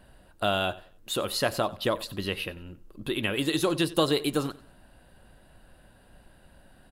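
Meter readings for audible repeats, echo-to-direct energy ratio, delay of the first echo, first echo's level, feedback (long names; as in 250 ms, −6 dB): 2, −19.5 dB, 92 ms, −20.0 dB, 32%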